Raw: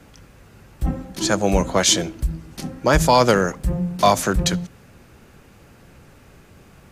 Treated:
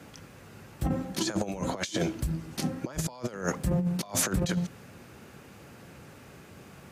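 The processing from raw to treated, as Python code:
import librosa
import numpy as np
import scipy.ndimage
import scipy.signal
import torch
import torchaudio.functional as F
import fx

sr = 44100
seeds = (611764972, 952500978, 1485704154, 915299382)

y = scipy.signal.sosfilt(scipy.signal.butter(2, 100.0, 'highpass', fs=sr, output='sos'), x)
y = fx.over_compress(y, sr, threshold_db=-24.0, ratio=-0.5)
y = F.gain(torch.from_numpy(y), -5.0).numpy()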